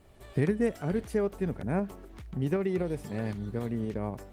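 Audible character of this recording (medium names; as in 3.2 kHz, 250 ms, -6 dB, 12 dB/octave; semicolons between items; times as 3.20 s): a quantiser's noise floor 12-bit, dither none; tremolo saw up 3.9 Hz, depth 30%; Opus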